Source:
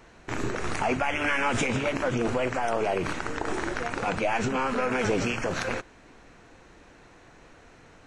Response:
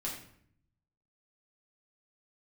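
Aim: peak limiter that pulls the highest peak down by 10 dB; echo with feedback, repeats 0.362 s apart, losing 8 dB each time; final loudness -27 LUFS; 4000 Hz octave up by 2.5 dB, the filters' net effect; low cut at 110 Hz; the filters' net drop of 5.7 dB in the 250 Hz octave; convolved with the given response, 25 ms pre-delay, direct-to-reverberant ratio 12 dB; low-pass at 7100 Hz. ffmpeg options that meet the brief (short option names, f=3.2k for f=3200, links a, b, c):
-filter_complex "[0:a]highpass=110,lowpass=7.1k,equalizer=f=250:t=o:g=-7,equalizer=f=4k:t=o:g=4,alimiter=limit=-23dB:level=0:latency=1,aecho=1:1:362|724|1086|1448|1810:0.398|0.159|0.0637|0.0255|0.0102,asplit=2[a][b];[1:a]atrim=start_sample=2205,adelay=25[c];[b][c]afir=irnorm=-1:irlink=0,volume=-13.5dB[d];[a][d]amix=inputs=2:normalize=0,volume=5dB"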